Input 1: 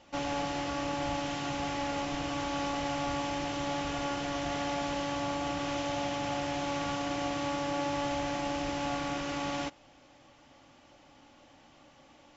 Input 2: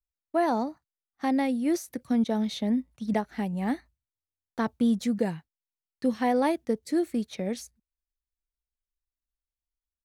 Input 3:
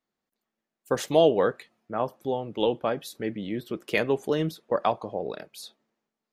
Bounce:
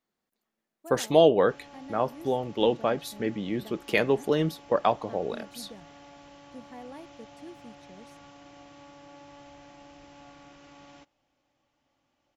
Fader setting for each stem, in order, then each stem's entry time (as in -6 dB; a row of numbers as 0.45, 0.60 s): -17.5, -20.0, +1.0 dB; 1.35, 0.50, 0.00 s